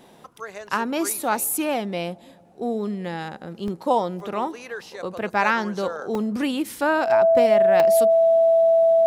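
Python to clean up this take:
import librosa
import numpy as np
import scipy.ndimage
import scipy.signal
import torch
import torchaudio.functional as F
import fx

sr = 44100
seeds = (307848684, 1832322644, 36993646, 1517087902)

y = fx.notch(x, sr, hz=660.0, q=30.0)
y = fx.fix_interpolate(y, sr, at_s=(0.67, 2.48, 3.68, 4.2, 6.15, 6.82, 7.8), length_ms=1.5)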